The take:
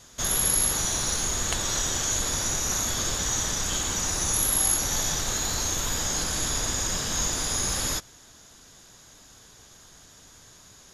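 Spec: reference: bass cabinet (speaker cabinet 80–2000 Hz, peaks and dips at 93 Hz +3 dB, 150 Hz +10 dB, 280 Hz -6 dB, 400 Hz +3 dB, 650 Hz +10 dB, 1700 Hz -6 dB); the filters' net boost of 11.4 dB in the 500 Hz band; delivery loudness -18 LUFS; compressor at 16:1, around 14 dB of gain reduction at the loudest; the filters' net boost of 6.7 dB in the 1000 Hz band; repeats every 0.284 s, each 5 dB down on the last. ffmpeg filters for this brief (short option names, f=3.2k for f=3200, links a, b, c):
-af "equalizer=f=500:t=o:g=6.5,equalizer=f=1k:t=o:g=4,acompressor=threshold=-33dB:ratio=16,highpass=f=80:w=0.5412,highpass=f=80:w=1.3066,equalizer=f=93:t=q:w=4:g=3,equalizer=f=150:t=q:w=4:g=10,equalizer=f=280:t=q:w=4:g=-6,equalizer=f=400:t=q:w=4:g=3,equalizer=f=650:t=q:w=4:g=10,equalizer=f=1.7k:t=q:w=4:g=-6,lowpass=f=2k:w=0.5412,lowpass=f=2k:w=1.3066,aecho=1:1:284|568|852|1136|1420|1704|1988:0.562|0.315|0.176|0.0988|0.0553|0.031|0.0173,volume=20.5dB"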